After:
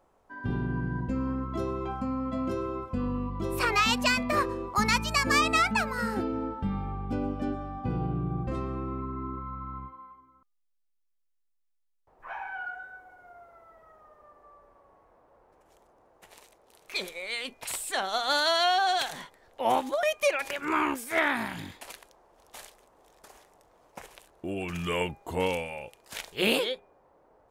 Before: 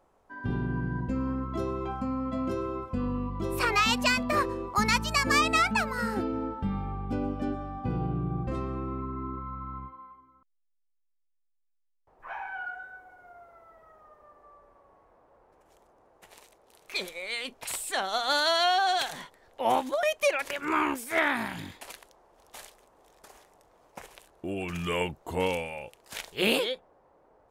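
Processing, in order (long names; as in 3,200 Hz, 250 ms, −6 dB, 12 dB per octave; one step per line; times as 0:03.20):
hum removal 404.9 Hz, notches 6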